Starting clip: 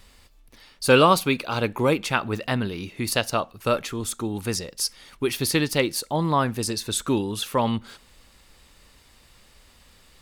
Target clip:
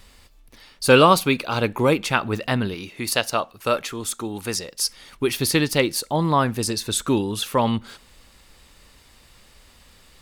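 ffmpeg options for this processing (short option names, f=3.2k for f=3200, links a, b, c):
-filter_complex "[0:a]asettb=1/sr,asplit=3[a][b][c];[a]atrim=end=2.744[d];[b]atrim=start=2.74:end=4.82,asetpts=PTS-STARTPTS,afade=t=in:d=0.004:c=qsin,afade=t=out:st=2.076:d=0.004:c=qsin,lowshelf=f=260:g=-8.5[e];[c]atrim=start=4.816[f];[d][e]acrossfade=d=0.004:c1=hsin:c2=qsin[g];[g][f]acrossfade=d=0.004:c1=qsin:c2=hsin,volume=2.5dB"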